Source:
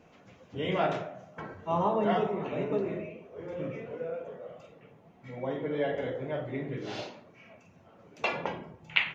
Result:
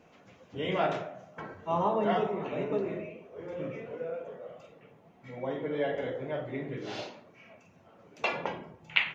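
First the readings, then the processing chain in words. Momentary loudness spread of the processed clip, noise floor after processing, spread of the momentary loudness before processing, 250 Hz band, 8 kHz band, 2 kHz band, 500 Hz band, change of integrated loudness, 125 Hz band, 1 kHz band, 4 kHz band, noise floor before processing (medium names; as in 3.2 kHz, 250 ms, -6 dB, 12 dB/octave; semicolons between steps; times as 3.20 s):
16 LU, -60 dBFS, 16 LU, -1.5 dB, no reading, 0.0 dB, -0.5 dB, -0.5 dB, -2.5 dB, 0.0 dB, 0.0 dB, -59 dBFS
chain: bass shelf 170 Hz -4.5 dB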